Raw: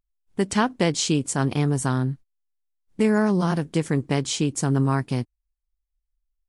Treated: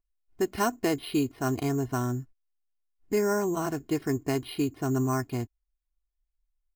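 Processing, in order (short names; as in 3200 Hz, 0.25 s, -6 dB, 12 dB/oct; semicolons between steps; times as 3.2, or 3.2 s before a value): bell 6000 Hz -6 dB 1.5 oct; comb 2.7 ms, depth 71%; careless resampling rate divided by 6×, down filtered, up hold; speed mistake 25 fps video run at 24 fps; gain -5.5 dB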